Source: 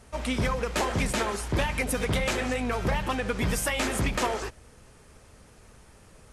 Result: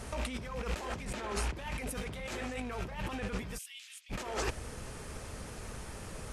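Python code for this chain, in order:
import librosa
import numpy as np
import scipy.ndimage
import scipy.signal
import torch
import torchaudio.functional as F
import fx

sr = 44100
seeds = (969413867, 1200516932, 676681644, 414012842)

y = fx.rattle_buzz(x, sr, strikes_db=-37.0, level_db=-32.0)
y = fx.high_shelf(y, sr, hz=7500.0, db=-11.0, at=(1.05, 1.53))
y = fx.over_compress(y, sr, threshold_db=-38.0, ratio=-1.0)
y = fx.ladder_highpass(y, sr, hz=2500.0, resonance_pct=40, at=(3.57, 4.09), fade=0.02)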